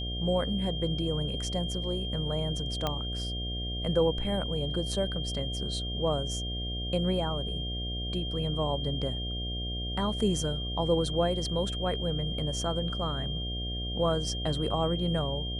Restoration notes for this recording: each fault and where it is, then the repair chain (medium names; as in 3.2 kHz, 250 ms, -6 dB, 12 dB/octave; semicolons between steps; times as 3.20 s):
buzz 60 Hz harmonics 12 -35 dBFS
whine 3.2 kHz -36 dBFS
2.87 s: pop -15 dBFS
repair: de-click; band-stop 3.2 kHz, Q 30; de-hum 60 Hz, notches 12